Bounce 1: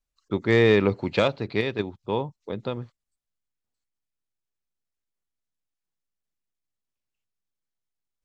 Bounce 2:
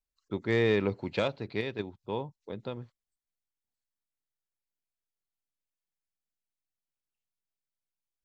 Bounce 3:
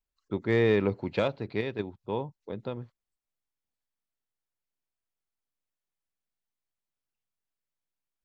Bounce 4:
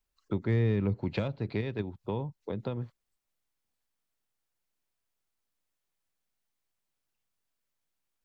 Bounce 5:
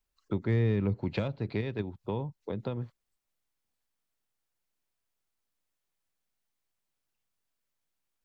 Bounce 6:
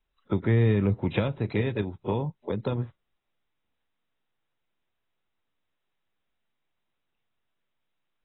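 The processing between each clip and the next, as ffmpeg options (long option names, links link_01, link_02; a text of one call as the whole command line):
ffmpeg -i in.wav -af "bandreject=frequency=1200:width=15,volume=-7.5dB" out.wav
ffmpeg -i in.wav -af "highshelf=frequency=3000:gain=-7.5,volume=2.5dB" out.wav
ffmpeg -i in.wav -filter_complex "[0:a]acrossover=split=190[link_01][link_02];[link_02]acompressor=threshold=-38dB:ratio=10[link_03];[link_01][link_03]amix=inputs=2:normalize=0,volume=5.5dB" out.wav
ffmpeg -i in.wav -af anull out.wav
ffmpeg -i in.wav -af "volume=5dB" -ar 24000 -c:a aac -b:a 16k out.aac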